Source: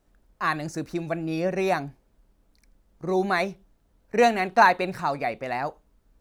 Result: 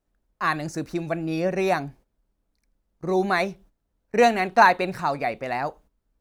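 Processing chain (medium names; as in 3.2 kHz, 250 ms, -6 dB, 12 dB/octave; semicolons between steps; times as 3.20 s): gate -51 dBFS, range -12 dB; trim +1.5 dB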